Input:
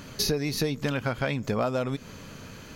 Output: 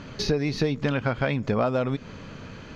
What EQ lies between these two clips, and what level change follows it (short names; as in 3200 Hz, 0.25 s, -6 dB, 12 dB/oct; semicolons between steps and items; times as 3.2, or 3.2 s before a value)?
air absorption 160 m; +3.5 dB